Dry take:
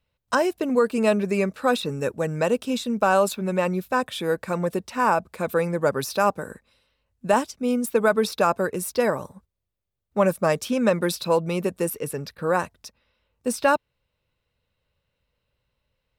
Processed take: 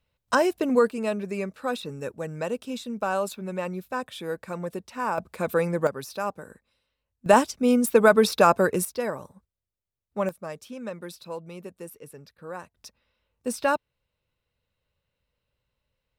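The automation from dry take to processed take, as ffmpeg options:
ffmpeg -i in.wav -af "asetnsamples=nb_out_samples=441:pad=0,asendcmd='0.9 volume volume -7.5dB;5.18 volume volume -1dB;5.87 volume volume -9dB;7.26 volume volume 3dB;8.85 volume volume -7dB;10.29 volume volume -15dB;12.77 volume volume -4dB',volume=0dB" out.wav

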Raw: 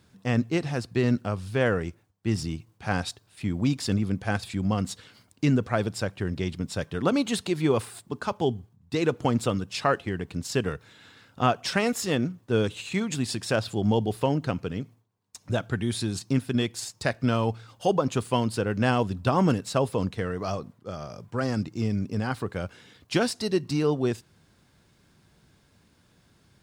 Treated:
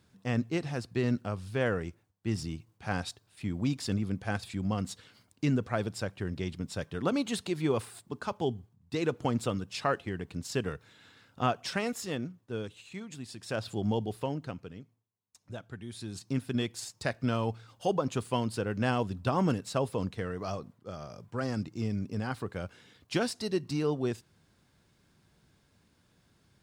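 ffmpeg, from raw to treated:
ffmpeg -i in.wav -af "volume=13dB,afade=type=out:start_time=11.43:duration=1.33:silence=0.354813,afade=type=in:start_time=13.35:duration=0.38:silence=0.354813,afade=type=out:start_time=13.73:duration=1.09:silence=0.334965,afade=type=in:start_time=15.91:duration=0.58:silence=0.334965" out.wav

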